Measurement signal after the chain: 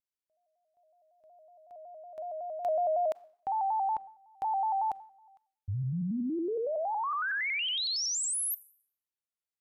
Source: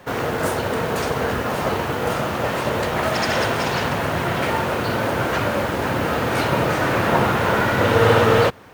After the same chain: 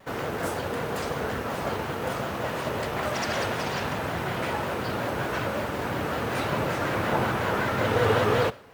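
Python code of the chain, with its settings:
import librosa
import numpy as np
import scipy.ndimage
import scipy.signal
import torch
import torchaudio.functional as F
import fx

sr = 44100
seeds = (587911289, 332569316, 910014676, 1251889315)

y = fx.rev_schroeder(x, sr, rt60_s=0.59, comb_ms=30, drr_db=19.0)
y = fx.vibrato_shape(y, sr, shape='square', rate_hz=5.4, depth_cents=100.0)
y = F.gain(torch.from_numpy(y), -7.5).numpy()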